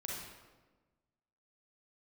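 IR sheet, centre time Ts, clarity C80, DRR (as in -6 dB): 79 ms, 2.5 dB, -4.0 dB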